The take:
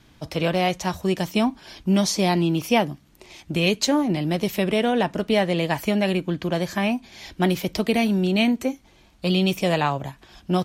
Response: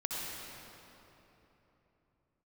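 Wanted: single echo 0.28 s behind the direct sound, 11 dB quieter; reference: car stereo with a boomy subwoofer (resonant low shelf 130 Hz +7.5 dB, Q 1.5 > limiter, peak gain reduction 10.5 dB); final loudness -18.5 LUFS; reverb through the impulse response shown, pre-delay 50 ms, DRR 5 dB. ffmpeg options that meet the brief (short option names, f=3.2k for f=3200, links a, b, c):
-filter_complex "[0:a]aecho=1:1:280:0.282,asplit=2[a][b];[1:a]atrim=start_sample=2205,adelay=50[c];[b][c]afir=irnorm=-1:irlink=0,volume=-9dB[d];[a][d]amix=inputs=2:normalize=0,lowshelf=f=130:t=q:w=1.5:g=7.5,volume=8dB,alimiter=limit=-9.5dB:level=0:latency=1"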